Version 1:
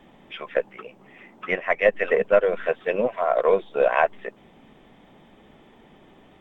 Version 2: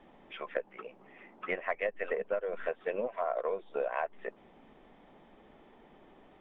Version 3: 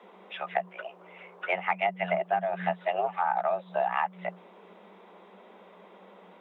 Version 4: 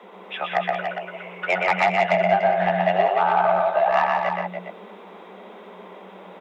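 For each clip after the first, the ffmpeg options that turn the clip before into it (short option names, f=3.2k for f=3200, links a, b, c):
-af "lowpass=f=1.5k:p=1,acompressor=threshold=-25dB:ratio=12,equalizer=f=110:w=0.53:g=-9,volume=-2.5dB"
-af "afreqshift=180,volume=5.5dB"
-filter_complex "[0:a]asplit=2[a][b];[b]aecho=0:1:123:0.708[c];[a][c]amix=inputs=2:normalize=0,asoftclip=type=tanh:threshold=-18dB,asplit=2[d][e];[e]aecho=0:1:177.8|288.6:0.398|0.398[f];[d][f]amix=inputs=2:normalize=0,volume=7.5dB"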